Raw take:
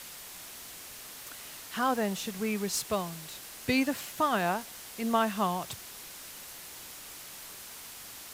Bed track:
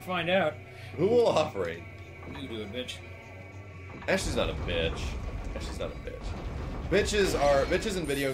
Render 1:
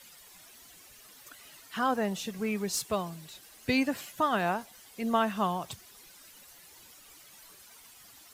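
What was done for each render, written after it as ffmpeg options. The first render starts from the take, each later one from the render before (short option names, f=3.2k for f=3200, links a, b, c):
-af "afftdn=nr=12:nf=-46"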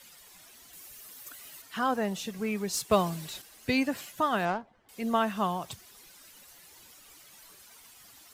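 -filter_complex "[0:a]asettb=1/sr,asplit=3[a][b][c];[a]atrim=end=0.734[d];[b]atrim=start=0.73:end=1.62,asetpts=PTS-STARTPTS,afade=t=in:d=0.004:c=qsin,afade=t=out:st=0.886:d=0.004:c=qsin,highshelf=f=9.3k:g=11[e];[c]atrim=start=1.616[f];[d][e]acrossfade=d=0.004:c1=hsin:c2=qsin[g];[g][f]acrossfade=d=0.004:c1=qsin:c2=hsin,asettb=1/sr,asplit=3[h][i][j];[h]atrim=end=2.914[k];[i]atrim=start=2.91:end=3.42,asetpts=PTS-STARTPTS,afade=t=in:d=0.004:c=qsin,afade=t=out:st=0.506:d=0.004:c=qsin,acontrast=87[l];[j]atrim=start=3.416[m];[k][l]acrossfade=d=0.004:c1=hsin:c2=qsin[n];[n][m]acrossfade=d=0.004:c1=qsin:c2=hsin,asettb=1/sr,asplit=3[o][p][q];[o]atrim=end=4.454[r];[p]atrim=start=4.45:end=4.89,asetpts=PTS-STARTPTS,afade=t=in:d=0.004:c=qsin,afade=t=out:st=0.436:d=0.004:c=qsin,adynamicsmooth=sensitivity=4.5:basefreq=1.1k[s];[q]atrim=start=4.886[t];[r][s]acrossfade=d=0.004:c1=hsin:c2=qsin[u];[u][t]acrossfade=d=0.004:c1=qsin:c2=hsin"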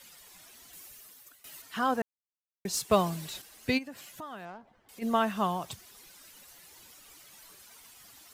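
-filter_complex "[0:a]asplit=3[a][b][c];[a]afade=t=out:st=3.77:d=0.02[d];[b]acompressor=threshold=-46dB:ratio=2.5:attack=3.2:release=140:knee=1:detection=peak,afade=t=in:st=3.77:d=0.02,afade=t=out:st=5.01:d=0.02[e];[c]afade=t=in:st=5.01:d=0.02[f];[d][e][f]amix=inputs=3:normalize=0,asplit=4[g][h][i][j];[g]atrim=end=1.44,asetpts=PTS-STARTPTS,afade=t=out:st=0.77:d=0.67:silence=0.149624[k];[h]atrim=start=1.44:end=2.02,asetpts=PTS-STARTPTS,afade=t=in:d=0.004:c=hsin:silence=0.149624,afade=t=out:st=0.576:d=0.004:c=hsin[l];[i]atrim=start=2.02:end=2.65,asetpts=PTS-STARTPTS,volume=0[m];[j]atrim=start=2.65,asetpts=PTS-STARTPTS,afade=t=in:d=0.004:c=hsin[n];[k][l][m][n]concat=n=4:v=0:a=1"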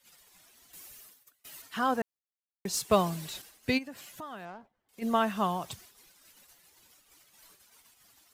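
-af "agate=range=-15dB:threshold=-52dB:ratio=16:detection=peak"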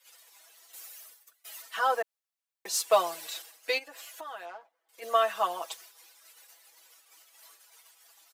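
-af "highpass=f=470:w=0.5412,highpass=f=470:w=1.3066,aecho=1:1:6.1:0.95"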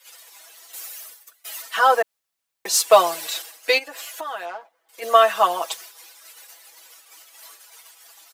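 -af "volume=10.5dB,alimiter=limit=-2dB:level=0:latency=1"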